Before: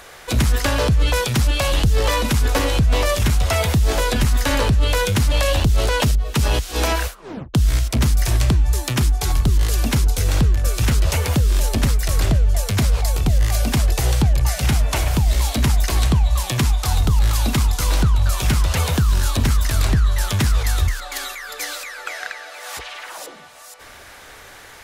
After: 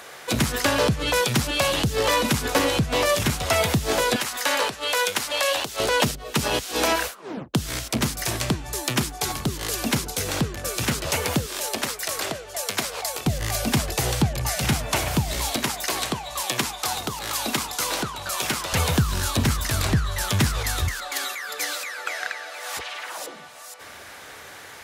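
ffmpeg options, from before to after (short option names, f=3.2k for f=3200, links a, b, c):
-af "asetnsamples=n=441:p=0,asendcmd='4.16 highpass f 570;5.8 highpass f 190;11.46 highpass f 450;13.26 highpass f 130;15.56 highpass f 330;18.73 highpass f 100',highpass=150"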